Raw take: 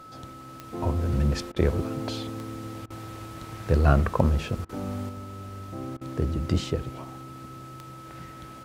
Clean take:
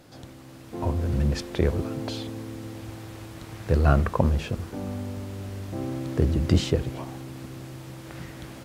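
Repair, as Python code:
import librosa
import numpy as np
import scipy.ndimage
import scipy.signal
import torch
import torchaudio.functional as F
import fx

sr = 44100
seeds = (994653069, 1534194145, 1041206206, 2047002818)

y = fx.fix_declick_ar(x, sr, threshold=10.0)
y = fx.notch(y, sr, hz=1300.0, q=30.0)
y = fx.fix_interpolate(y, sr, at_s=(1.52, 2.86, 4.65, 5.97), length_ms=41.0)
y = fx.fix_level(y, sr, at_s=5.09, step_db=4.5)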